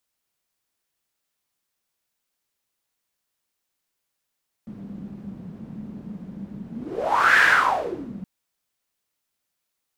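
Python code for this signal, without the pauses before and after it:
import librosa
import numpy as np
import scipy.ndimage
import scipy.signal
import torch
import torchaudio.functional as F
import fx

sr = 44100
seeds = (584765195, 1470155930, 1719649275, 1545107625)

y = fx.whoosh(sr, seeds[0], length_s=3.57, peak_s=2.74, rise_s=0.75, fall_s=0.81, ends_hz=200.0, peak_hz=1700.0, q=7.4, swell_db=21)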